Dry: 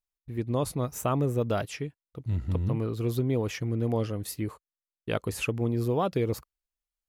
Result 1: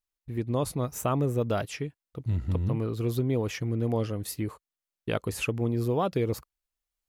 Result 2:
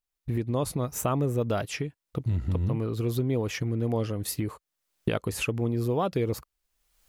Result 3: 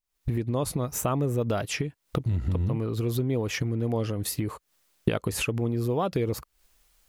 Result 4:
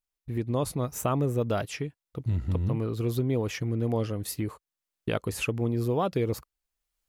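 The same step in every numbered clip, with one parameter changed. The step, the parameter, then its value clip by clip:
recorder AGC, rising by: 5.5 dB/s, 36 dB/s, 90 dB/s, 14 dB/s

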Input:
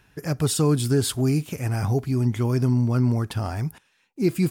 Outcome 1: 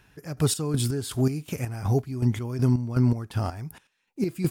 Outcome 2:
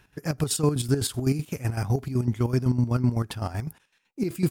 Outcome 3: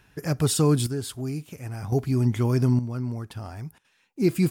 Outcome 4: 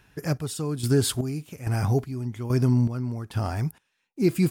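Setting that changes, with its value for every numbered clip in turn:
square tremolo, rate: 2.7 Hz, 7.9 Hz, 0.52 Hz, 1.2 Hz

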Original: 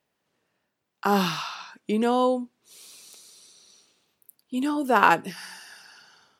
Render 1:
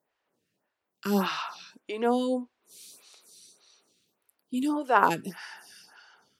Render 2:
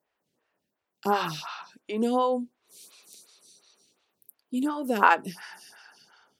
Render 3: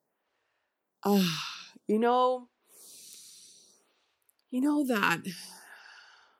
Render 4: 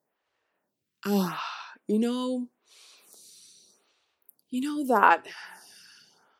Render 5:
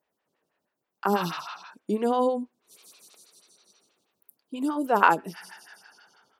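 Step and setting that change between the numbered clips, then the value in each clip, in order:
lamp-driven phase shifter, rate: 1.7 Hz, 2.8 Hz, 0.54 Hz, 0.81 Hz, 6.2 Hz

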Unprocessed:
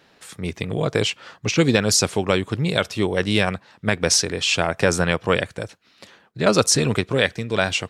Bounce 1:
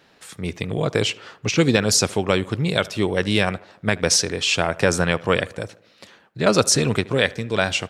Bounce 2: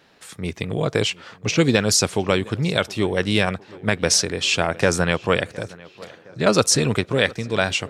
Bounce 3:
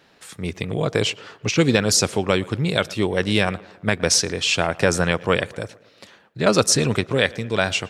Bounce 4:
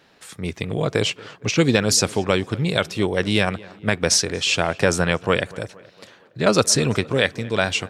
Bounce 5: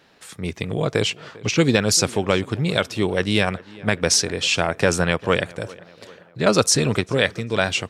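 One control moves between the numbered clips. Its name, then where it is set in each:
tape echo, time: 76 ms, 713 ms, 114 ms, 232 ms, 397 ms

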